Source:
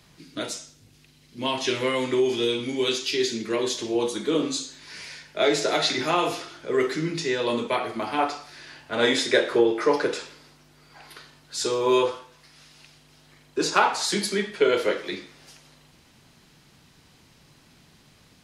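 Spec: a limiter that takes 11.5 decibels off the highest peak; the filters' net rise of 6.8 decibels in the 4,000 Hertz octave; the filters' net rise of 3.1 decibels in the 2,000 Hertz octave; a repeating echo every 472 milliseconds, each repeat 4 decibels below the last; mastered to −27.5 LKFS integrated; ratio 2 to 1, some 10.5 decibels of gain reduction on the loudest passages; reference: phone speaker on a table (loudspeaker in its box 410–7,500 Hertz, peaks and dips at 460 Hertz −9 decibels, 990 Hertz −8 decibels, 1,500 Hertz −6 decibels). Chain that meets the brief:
parametric band 2,000 Hz +4.5 dB
parametric band 4,000 Hz +7 dB
downward compressor 2 to 1, threshold −33 dBFS
brickwall limiter −23.5 dBFS
loudspeaker in its box 410–7,500 Hz, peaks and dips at 460 Hz −9 dB, 990 Hz −8 dB, 1,500 Hz −6 dB
repeating echo 472 ms, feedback 63%, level −4 dB
level +6.5 dB

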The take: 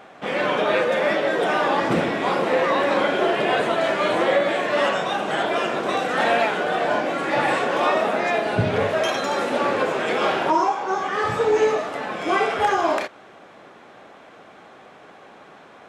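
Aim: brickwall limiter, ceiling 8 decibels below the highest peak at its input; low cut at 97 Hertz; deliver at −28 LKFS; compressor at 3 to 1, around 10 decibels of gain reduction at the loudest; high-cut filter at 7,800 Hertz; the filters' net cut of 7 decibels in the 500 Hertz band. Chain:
high-pass filter 97 Hz
low-pass filter 7,800 Hz
parametric band 500 Hz −9 dB
downward compressor 3 to 1, threshold −32 dBFS
level +7.5 dB
brickwall limiter −20 dBFS

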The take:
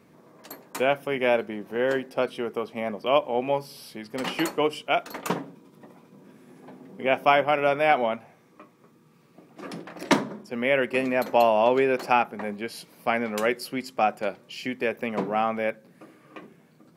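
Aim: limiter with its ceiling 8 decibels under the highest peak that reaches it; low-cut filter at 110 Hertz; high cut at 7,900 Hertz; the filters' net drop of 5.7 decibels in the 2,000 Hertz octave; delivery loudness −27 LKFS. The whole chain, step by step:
high-pass filter 110 Hz
low-pass filter 7,900 Hz
parametric band 2,000 Hz −7.5 dB
level +1.5 dB
brickwall limiter −13.5 dBFS

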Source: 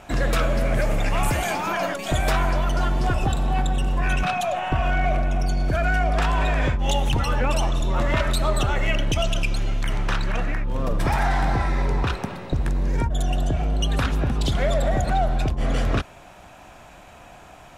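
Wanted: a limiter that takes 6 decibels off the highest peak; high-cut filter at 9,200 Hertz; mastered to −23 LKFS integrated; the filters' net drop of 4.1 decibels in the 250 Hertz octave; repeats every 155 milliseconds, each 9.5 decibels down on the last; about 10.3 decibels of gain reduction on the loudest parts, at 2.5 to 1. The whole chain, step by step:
low-pass filter 9,200 Hz
parametric band 250 Hz −6 dB
downward compressor 2.5 to 1, threshold −34 dBFS
brickwall limiter −27 dBFS
repeating echo 155 ms, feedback 33%, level −9.5 dB
level +12.5 dB

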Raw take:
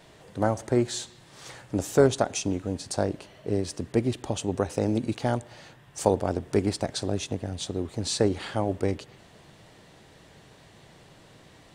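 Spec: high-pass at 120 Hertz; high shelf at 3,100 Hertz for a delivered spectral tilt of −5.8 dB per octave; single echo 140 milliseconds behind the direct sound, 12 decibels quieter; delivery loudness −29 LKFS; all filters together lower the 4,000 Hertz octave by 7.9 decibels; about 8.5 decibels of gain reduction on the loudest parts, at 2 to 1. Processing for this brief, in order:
high-pass filter 120 Hz
high-shelf EQ 3,100 Hz −8 dB
parametric band 4,000 Hz −3.5 dB
downward compressor 2 to 1, threshold −29 dBFS
single-tap delay 140 ms −12 dB
level +4.5 dB

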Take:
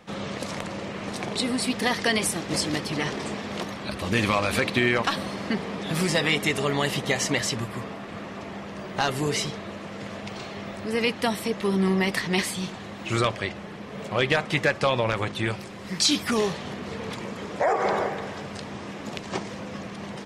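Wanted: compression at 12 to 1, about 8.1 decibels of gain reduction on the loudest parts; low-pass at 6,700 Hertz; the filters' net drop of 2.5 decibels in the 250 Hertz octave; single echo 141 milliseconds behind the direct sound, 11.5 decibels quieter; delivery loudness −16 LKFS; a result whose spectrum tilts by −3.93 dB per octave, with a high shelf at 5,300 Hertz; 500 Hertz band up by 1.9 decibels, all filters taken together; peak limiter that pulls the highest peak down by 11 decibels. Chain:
low-pass filter 6,700 Hz
parametric band 250 Hz −4.5 dB
parametric band 500 Hz +3.5 dB
high-shelf EQ 5,300 Hz +5.5 dB
downward compressor 12 to 1, threshold −25 dBFS
brickwall limiter −22 dBFS
single-tap delay 141 ms −11.5 dB
level +17 dB

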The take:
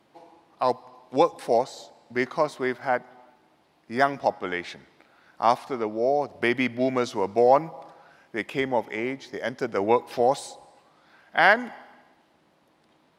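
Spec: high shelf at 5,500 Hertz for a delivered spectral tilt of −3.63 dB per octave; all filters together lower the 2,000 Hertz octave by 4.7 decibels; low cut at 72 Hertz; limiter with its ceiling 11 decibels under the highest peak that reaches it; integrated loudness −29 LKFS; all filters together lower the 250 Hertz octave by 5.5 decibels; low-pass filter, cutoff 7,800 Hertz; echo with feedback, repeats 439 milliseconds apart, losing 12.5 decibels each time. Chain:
high-pass filter 72 Hz
low-pass filter 7,800 Hz
parametric band 250 Hz −7 dB
parametric band 2,000 Hz −5 dB
high-shelf EQ 5,500 Hz −8.5 dB
brickwall limiter −18 dBFS
repeating echo 439 ms, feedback 24%, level −12.5 dB
level +3.5 dB

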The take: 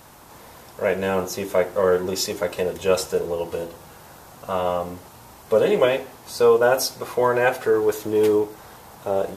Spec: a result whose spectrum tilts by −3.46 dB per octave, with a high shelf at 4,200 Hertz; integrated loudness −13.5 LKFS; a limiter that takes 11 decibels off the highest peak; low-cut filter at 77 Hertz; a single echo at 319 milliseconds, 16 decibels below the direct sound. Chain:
high-pass filter 77 Hz
high-shelf EQ 4,200 Hz +8.5 dB
brickwall limiter −15 dBFS
single-tap delay 319 ms −16 dB
level +12 dB

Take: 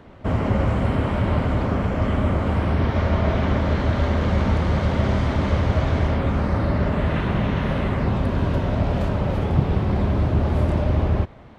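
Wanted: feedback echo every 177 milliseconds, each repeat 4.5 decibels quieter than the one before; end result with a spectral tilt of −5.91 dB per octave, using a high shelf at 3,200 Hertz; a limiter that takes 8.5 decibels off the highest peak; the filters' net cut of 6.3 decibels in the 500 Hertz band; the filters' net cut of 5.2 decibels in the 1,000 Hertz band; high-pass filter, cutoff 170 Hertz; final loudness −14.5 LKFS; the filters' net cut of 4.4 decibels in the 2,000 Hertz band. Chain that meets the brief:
high-pass filter 170 Hz
parametric band 500 Hz −7 dB
parametric band 1,000 Hz −3.5 dB
parametric band 2,000 Hz −6 dB
high-shelf EQ 3,200 Hz +6.5 dB
brickwall limiter −20 dBFS
repeating echo 177 ms, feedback 60%, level −4.5 dB
level +13 dB

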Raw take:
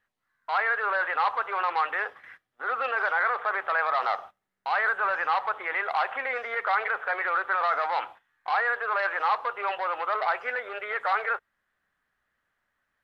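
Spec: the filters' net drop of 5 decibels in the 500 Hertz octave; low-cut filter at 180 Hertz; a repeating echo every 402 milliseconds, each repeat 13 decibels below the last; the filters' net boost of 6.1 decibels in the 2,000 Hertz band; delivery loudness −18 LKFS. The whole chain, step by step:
high-pass filter 180 Hz
parametric band 500 Hz −7 dB
parametric band 2,000 Hz +8.5 dB
repeating echo 402 ms, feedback 22%, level −13 dB
level +5 dB

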